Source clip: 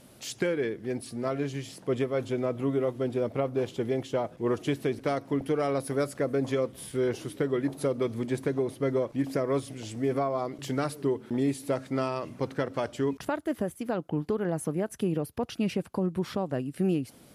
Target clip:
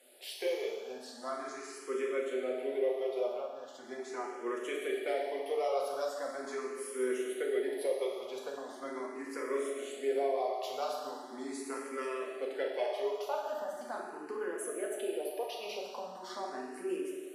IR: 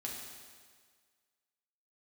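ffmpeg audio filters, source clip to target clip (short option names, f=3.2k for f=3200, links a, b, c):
-filter_complex "[0:a]highpass=f=420:w=0.5412,highpass=f=420:w=1.3066,asettb=1/sr,asplit=3[a][b][c];[a]atrim=end=3.334[d];[b]atrim=start=3.33:end=3.84,asetpts=PTS-STARTPTS,afade=t=in:d=0.004:c=qsin,afade=t=out:st=0.506:d=0.004:c=qsin,acompressor=threshold=-38dB:ratio=3[e];[c]atrim=start=3.836[f];[d][e]acrossfade=d=0.004:c1=hsin:c2=qsin[g];[g][f]acrossfade=d=0.004:c1=qsin:c2=hsin[h];[1:a]atrim=start_sample=2205[i];[h][i]afir=irnorm=-1:irlink=0,asplit=2[j][k];[k]afreqshift=0.4[l];[j][l]amix=inputs=2:normalize=1"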